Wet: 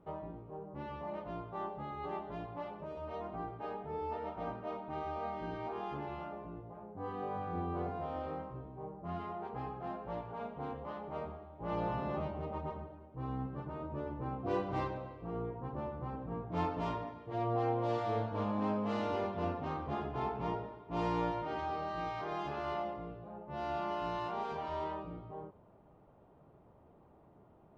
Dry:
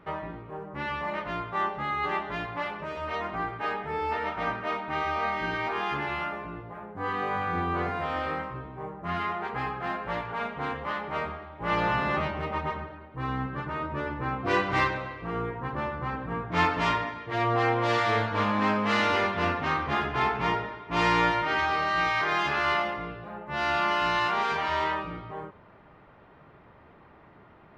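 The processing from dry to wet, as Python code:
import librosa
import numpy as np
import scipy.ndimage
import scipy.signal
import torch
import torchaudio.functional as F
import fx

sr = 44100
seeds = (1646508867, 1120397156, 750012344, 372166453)

y = fx.curve_eq(x, sr, hz=(730.0, 1900.0, 2900.0), db=(0, -18, -12))
y = y * 10.0 ** (-6.5 / 20.0)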